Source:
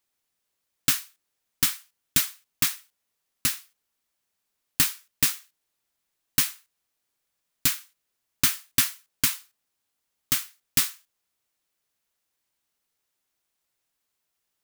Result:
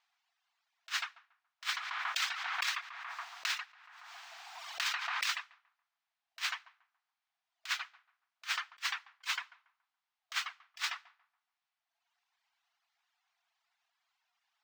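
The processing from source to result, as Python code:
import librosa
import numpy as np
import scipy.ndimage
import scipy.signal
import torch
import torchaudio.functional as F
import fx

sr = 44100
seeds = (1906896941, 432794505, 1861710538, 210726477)

y = fx.brickwall_highpass(x, sr, low_hz=660.0)
y = fx.air_absorb(y, sr, metres=190.0)
y = fx.echo_filtered(y, sr, ms=141, feedback_pct=43, hz=1400.0, wet_db=-10)
y = fx.over_compress(y, sr, threshold_db=-39.0, ratio=-0.5)
y = fx.dereverb_blind(y, sr, rt60_s=1.4)
y = fx.pre_swell(y, sr, db_per_s=25.0, at=(1.72, 5.29), fade=0.02)
y = y * librosa.db_to_amplitude(4.5)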